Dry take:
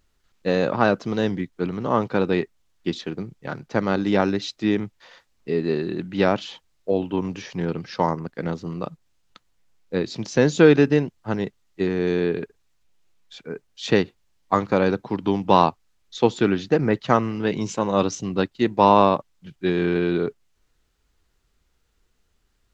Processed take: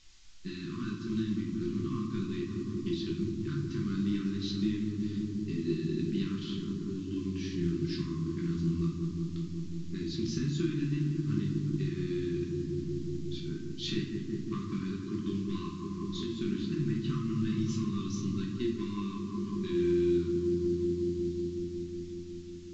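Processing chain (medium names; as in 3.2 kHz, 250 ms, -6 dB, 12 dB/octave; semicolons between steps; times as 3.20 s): filtered feedback delay 183 ms, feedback 84%, low-pass 1.3 kHz, level -10 dB; compression 5:1, threshold -26 dBFS, peak gain reduction 16 dB; saturation -17.5 dBFS, distortion -22 dB; brick-wall FIR band-stop 390–1000 Hz; peaking EQ 1.3 kHz -12.5 dB 2.5 oct; added noise violet -46 dBFS; reverberation RT60 0.65 s, pre-delay 5 ms, DRR -1.5 dB; dynamic bell 3.9 kHz, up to +3 dB, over -52 dBFS, Q 1.2; low-pass 5 kHz 12 dB/octave; trim -3 dB; µ-law 128 kbps 16 kHz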